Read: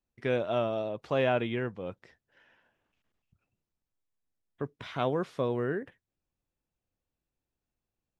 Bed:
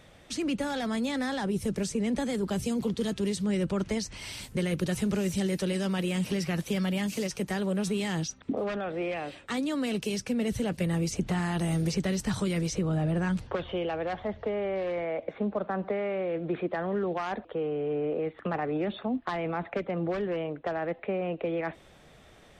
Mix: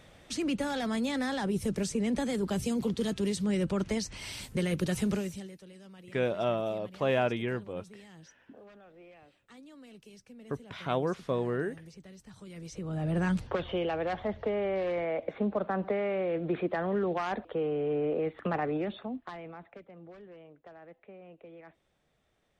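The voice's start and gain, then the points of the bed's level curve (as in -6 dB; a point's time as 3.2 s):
5.90 s, -0.5 dB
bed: 5.13 s -1 dB
5.6 s -22 dB
12.33 s -22 dB
13.2 s 0 dB
18.65 s 0 dB
19.89 s -19.5 dB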